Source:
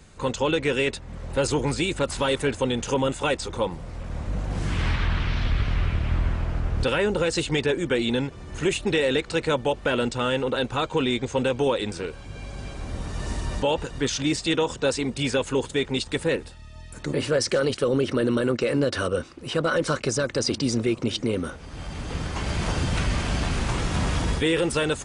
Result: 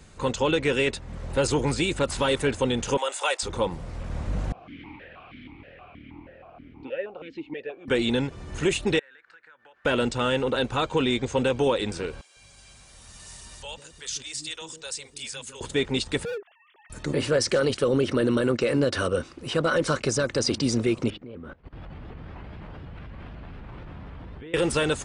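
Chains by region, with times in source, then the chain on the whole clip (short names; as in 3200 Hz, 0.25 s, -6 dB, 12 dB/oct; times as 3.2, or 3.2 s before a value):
2.97–3.43 HPF 560 Hz 24 dB/oct + high shelf 6500 Hz +8.5 dB
4.52–7.88 air absorption 200 m + vowel sequencer 6.3 Hz
8.99–9.85 band-pass 1600 Hz, Q 6.5 + compressor 8:1, threshold -49 dBFS
12.21–15.61 pre-emphasis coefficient 0.9 + notch 280 Hz, Q 7.5 + bands offset in time highs, lows 0.15 s, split 380 Hz
16.25–16.9 sine-wave speech + treble ducked by the level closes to 1400 Hz, closed at -22 dBFS + hard clip -29.5 dBFS
21.1–24.54 air absorption 430 m + level quantiser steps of 20 dB + shaped vibrato saw up 4 Hz, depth 160 cents
whole clip: dry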